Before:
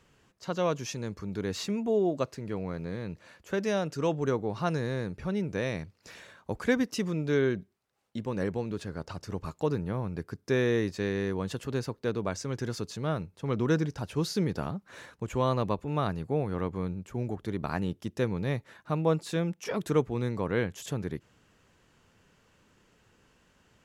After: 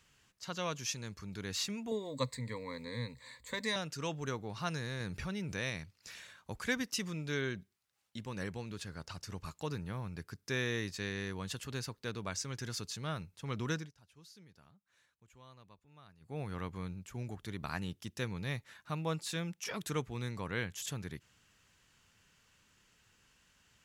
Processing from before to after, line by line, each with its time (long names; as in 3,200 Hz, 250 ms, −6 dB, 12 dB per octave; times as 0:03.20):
0:01.91–0:03.76: EQ curve with evenly spaced ripples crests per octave 1, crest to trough 18 dB
0:05.00–0:05.70: envelope flattener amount 50%
0:13.70–0:16.42: duck −22 dB, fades 0.22 s
whole clip: guitar amp tone stack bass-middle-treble 5-5-5; level +8 dB